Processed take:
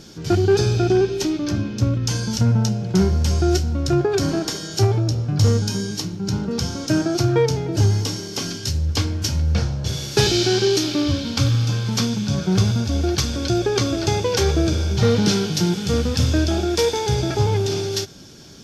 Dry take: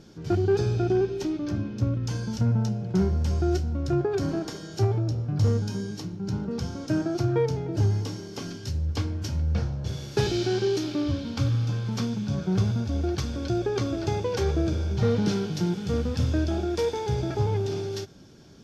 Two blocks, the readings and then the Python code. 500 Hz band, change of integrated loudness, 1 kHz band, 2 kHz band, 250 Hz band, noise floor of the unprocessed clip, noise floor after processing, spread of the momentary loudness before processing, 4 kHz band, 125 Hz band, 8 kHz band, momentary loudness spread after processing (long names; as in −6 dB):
+6.5 dB, +7.0 dB, +7.5 dB, +10.0 dB, +6.0 dB, −40 dBFS, −32 dBFS, 7 LU, +14.0 dB, +6.0 dB, can't be measured, 6 LU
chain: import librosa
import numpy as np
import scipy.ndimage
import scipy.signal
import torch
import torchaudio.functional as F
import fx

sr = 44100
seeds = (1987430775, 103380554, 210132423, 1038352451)

y = fx.high_shelf(x, sr, hz=2400.0, db=10.5)
y = y * librosa.db_to_amplitude(6.0)